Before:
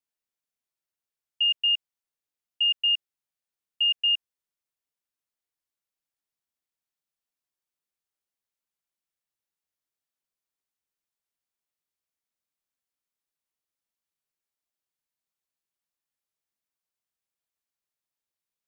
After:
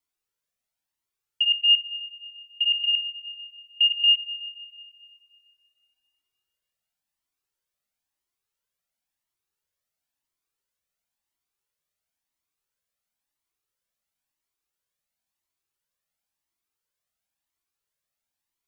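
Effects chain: spring tank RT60 2.4 s, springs 49 ms, chirp 30 ms, DRR 12 dB; Shepard-style flanger rising 0.97 Hz; trim +8.5 dB

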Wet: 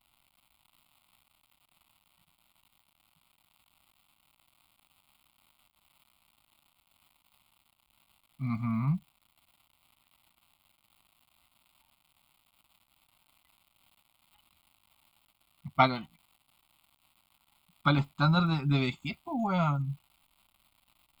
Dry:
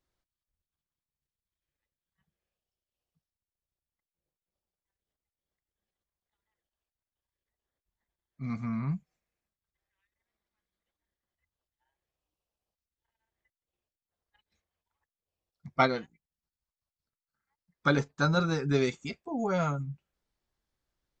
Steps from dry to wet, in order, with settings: crackle 300 per s -52 dBFS; static phaser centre 1.7 kHz, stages 6; trim +4.5 dB

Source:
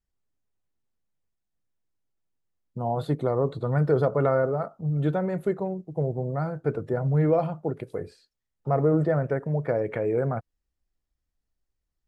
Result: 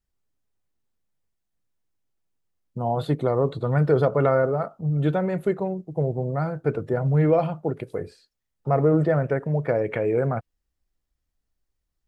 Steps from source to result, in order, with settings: dynamic bell 2.8 kHz, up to +6 dB, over -51 dBFS, Q 1.6; trim +2.5 dB

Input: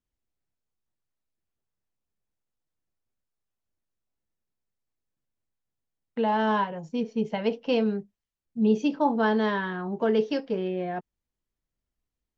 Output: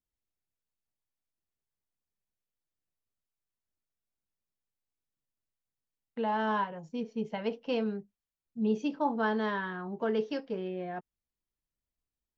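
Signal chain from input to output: dynamic bell 1.3 kHz, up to +4 dB, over -39 dBFS, Q 1.4; trim -7 dB

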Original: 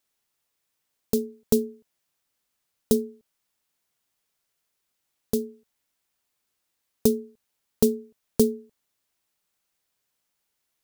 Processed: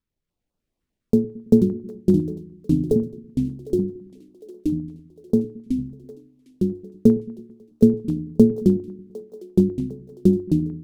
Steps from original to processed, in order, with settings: octave divider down 1 oct, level -4 dB; 1.71–2.96 s: static phaser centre 500 Hz, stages 4; ever faster or slower copies 270 ms, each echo -3 st, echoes 3; resonant low shelf 140 Hz -13.5 dB, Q 1.5; on a send: two-band feedback delay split 380 Hz, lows 110 ms, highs 755 ms, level -15.5 dB; on the sum: bit crusher 12-bit; tilt EQ -4.5 dB/octave; step-sequenced notch 10 Hz 690–2000 Hz; trim -3 dB

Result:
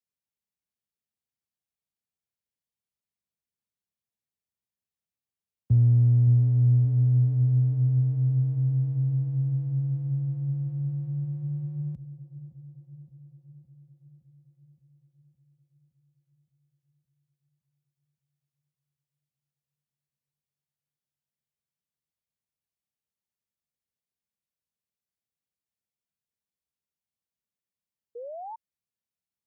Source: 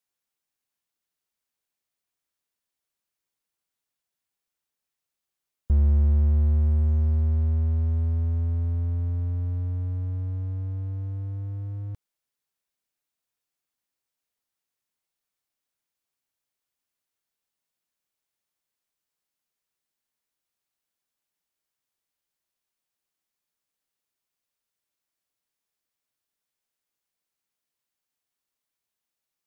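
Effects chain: FFT filter 170 Hz 0 dB, 250 Hz -11 dB, 380 Hz -7 dB, 1.3 kHz -14 dB, 1.9 kHz -11 dB; frequency shift +47 Hz; on a send: feedback echo behind a low-pass 566 ms, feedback 64%, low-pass 770 Hz, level -14 dB; on the sum: painted sound rise, 28.15–28.56 s, 460–930 Hz -38 dBFS

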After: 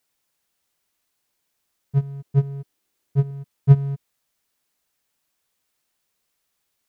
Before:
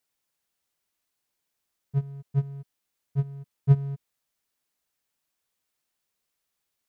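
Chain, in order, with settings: 2.22–3.31 s: peaking EQ 340 Hz +7.5 dB 0.81 oct; trim +6 dB

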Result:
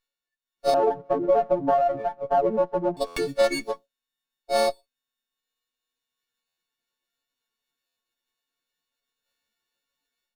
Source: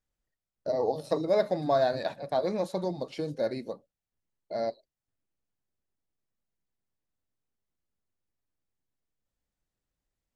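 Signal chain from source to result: partials quantised in pitch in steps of 4 st; high-pass 540 Hz 6 dB/octave; peak limiter -22.5 dBFS, peak gain reduction 7 dB; reverb removal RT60 1.5 s; 0.74–2.97 s: low-pass 1 kHz 24 dB/octave; spectral noise reduction 6 dB; level rider gain up to 12.5 dB; buffer glitch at 3.06/6.47/7.86 s, samples 512, times 8; sliding maximum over 5 samples

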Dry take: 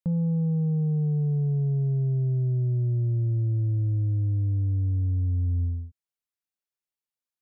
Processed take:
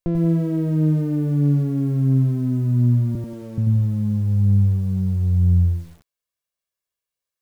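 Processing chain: comb filter that takes the minimum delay 1.8 ms; 3.15–3.58 s: resonant high-pass 430 Hz, resonance Q 4.9; bit-crushed delay 90 ms, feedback 35%, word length 9-bit, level -6 dB; trim +6.5 dB

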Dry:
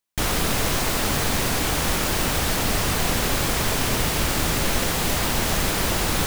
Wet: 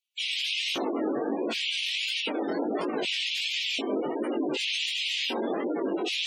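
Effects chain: LFO high-pass square 0.66 Hz 320–2800 Hz; spectral gate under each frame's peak -10 dB strong; chorus 1.4 Hz, delay 16.5 ms, depth 5.8 ms

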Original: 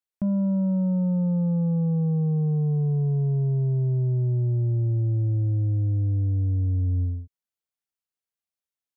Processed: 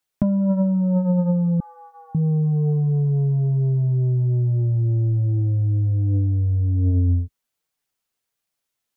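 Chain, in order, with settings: flange 1.3 Hz, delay 6.1 ms, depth 3.1 ms, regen -18%; 1.60–2.15 s: steep high-pass 830 Hz 36 dB/octave; in parallel at +2.5 dB: compressor with a negative ratio -31 dBFS, ratio -0.5; on the sum: trim +3 dB

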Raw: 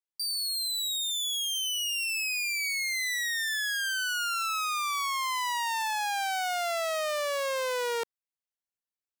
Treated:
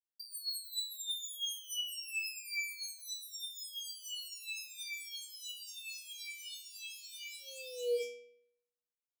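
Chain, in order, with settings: inharmonic resonator 240 Hz, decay 0.74 s, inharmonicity 0.002; FFT band-reject 540–2300 Hz; trim +7.5 dB

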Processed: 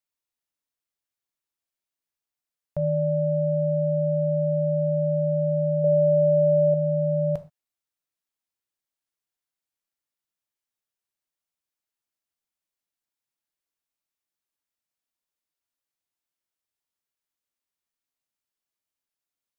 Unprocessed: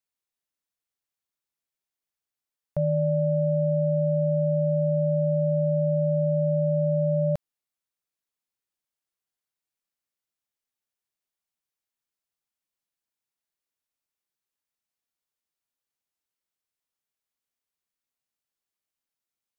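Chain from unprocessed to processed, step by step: 5.84–6.74 s: peaking EQ 490 Hz +10 dB 0.66 oct; gated-style reverb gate 150 ms falling, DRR 9.5 dB; trim -1.5 dB

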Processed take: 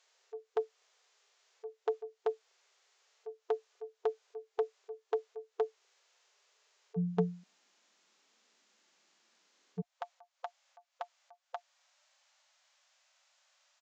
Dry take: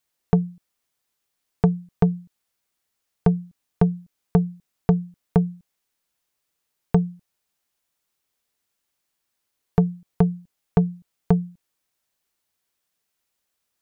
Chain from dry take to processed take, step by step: speakerphone echo 240 ms, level -7 dB; slow attack 522 ms; harmonic-percussive split harmonic +8 dB; brick-wall FIR high-pass 370 Hz, from 6.96 s 170 Hz, from 9.80 s 520 Hz; trim +5.5 dB; Vorbis 96 kbps 16 kHz

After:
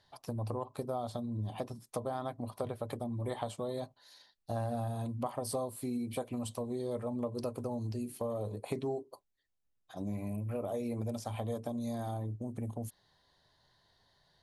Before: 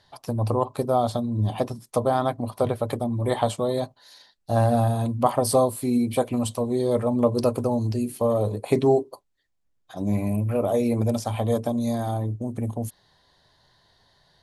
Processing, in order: compression 3:1, threshold -26 dBFS, peak gain reduction 9.5 dB; trim -8.5 dB

